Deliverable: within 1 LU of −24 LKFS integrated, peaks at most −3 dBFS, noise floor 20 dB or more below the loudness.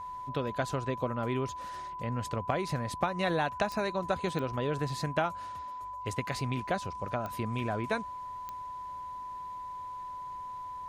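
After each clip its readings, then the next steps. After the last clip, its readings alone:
number of clicks 4; interfering tone 1,000 Hz; level of the tone −38 dBFS; integrated loudness −34.5 LKFS; sample peak −15.0 dBFS; target loudness −24.0 LKFS
→ click removal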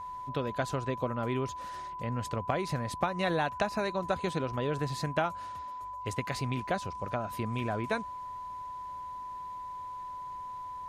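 number of clicks 0; interfering tone 1,000 Hz; level of the tone −38 dBFS
→ notch filter 1,000 Hz, Q 30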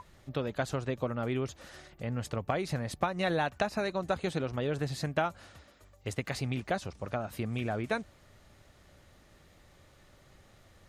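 interfering tone none found; integrated loudness −34.0 LKFS; sample peak −15.5 dBFS; target loudness −24.0 LKFS
→ level +10 dB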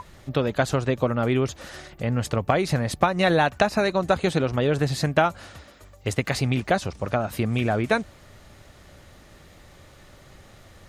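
integrated loudness −24.0 LKFS; sample peak −5.5 dBFS; background noise floor −51 dBFS

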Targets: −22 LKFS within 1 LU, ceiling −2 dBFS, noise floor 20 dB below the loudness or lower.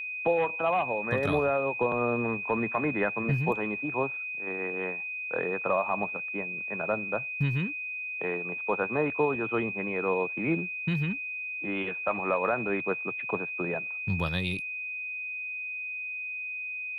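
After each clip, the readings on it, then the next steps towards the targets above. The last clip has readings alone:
interfering tone 2,500 Hz; level of the tone −33 dBFS; integrated loudness −29.5 LKFS; sample peak −15.5 dBFS; target loudness −22.0 LKFS
→ notch filter 2,500 Hz, Q 30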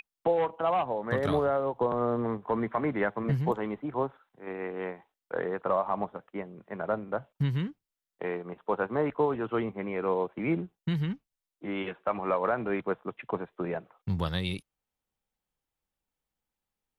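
interfering tone none found; integrated loudness −31.5 LKFS; sample peak −16.5 dBFS; target loudness −22.0 LKFS
→ level +9.5 dB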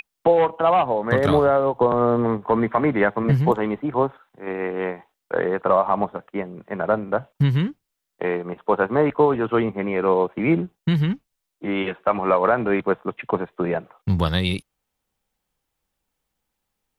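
integrated loudness −21.5 LKFS; sample peak −7.0 dBFS; background noise floor −80 dBFS

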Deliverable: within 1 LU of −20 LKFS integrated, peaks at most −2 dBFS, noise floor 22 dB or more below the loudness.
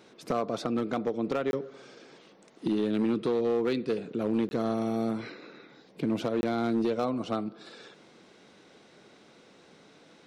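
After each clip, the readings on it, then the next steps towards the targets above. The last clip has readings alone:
share of clipped samples 1.1%; peaks flattened at −21.0 dBFS; number of dropouts 3; longest dropout 21 ms; integrated loudness −30.0 LKFS; sample peak −21.0 dBFS; target loudness −20.0 LKFS
→ clipped peaks rebuilt −21 dBFS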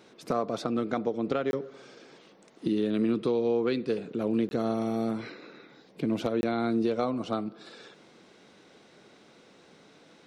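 share of clipped samples 0.0%; number of dropouts 3; longest dropout 21 ms
→ repair the gap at 0:01.51/0:04.49/0:06.41, 21 ms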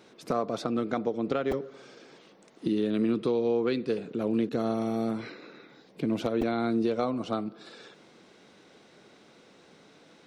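number of dropouts 0; integrated loudness −29.5 LKFS; sample peak −14.0 dBFS; target loudness −20.0 LKFS
→ level +9.5 dB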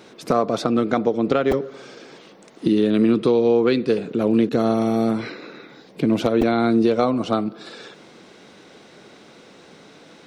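integrated loudness −20.0 LKFS; sample peak −4.5 dBFS; background noise floor −48 dBFS

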